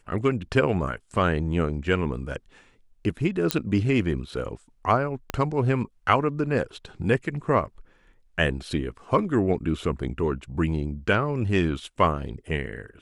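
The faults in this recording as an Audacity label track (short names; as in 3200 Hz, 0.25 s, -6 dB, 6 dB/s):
3.510000	3.510000	pop -4 dBFS
5.300000	5.300000	pop -13 dBFS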